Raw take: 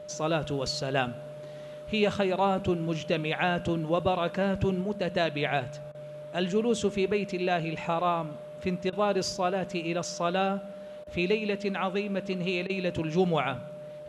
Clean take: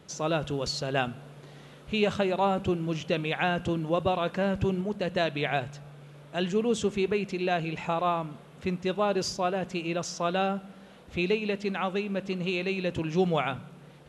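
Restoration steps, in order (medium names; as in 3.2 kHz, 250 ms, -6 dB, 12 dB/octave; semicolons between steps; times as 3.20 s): band-stop 600 Hz, Q 30; interpolate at 5.92/8.90/11.04/12.67 s, 25 ms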